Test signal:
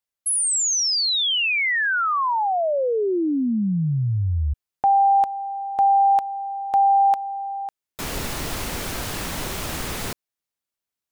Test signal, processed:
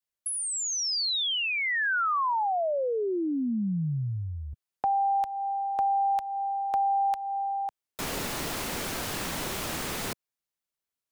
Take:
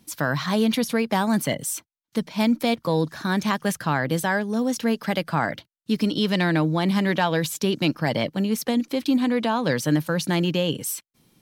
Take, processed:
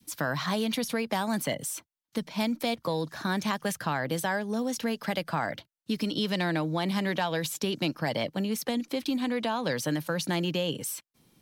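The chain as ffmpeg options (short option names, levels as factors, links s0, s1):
-filter_complex "[0:a]adynamicequalizer=threshold=0.0398:dfrequency=690:dqfactor=0.96:tfrequency=690:tqfactor=0.96:attack=5:release=100:ratio=0.375:range=2.5:mode=boostabove:tftype=bell,acrossover=split=130|1700|3800[s0][s1][s2][s3];[s0]acompressor=threshold=0.00891:ratio=4[s4];[s1]acompressor=threshold=0.0562:ratio=4[s5];[s2]acompressor=threshold=0.0251:ratio=4[s6];[s3]acompressor=threshold=0.0355:ratio=4[s7];[s4][s5][s6][s7]amix=inputs=4:normalize=0,volume=0.708"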